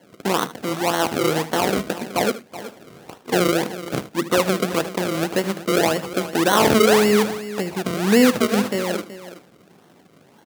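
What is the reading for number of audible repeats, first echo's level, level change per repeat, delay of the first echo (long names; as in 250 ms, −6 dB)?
3, −15.0 dB, repeats not evenly spaced, 77 ms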